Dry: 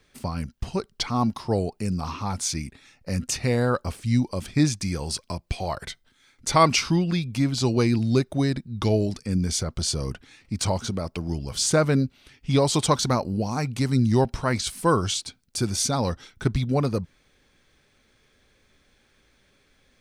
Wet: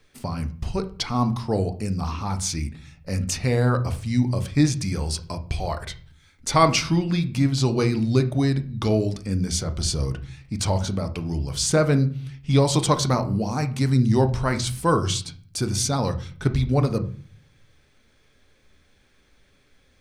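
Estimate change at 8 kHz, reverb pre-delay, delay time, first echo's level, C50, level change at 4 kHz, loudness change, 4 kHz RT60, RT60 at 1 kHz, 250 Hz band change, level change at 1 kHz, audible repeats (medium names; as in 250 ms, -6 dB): 0.0 dB, 7 ms, no echo, no echo, 14.5 dB, 0.0 dB, +1.5 dB, 0.35 s, 0.45 s, +1.0 dB, +0.5 dB, no echo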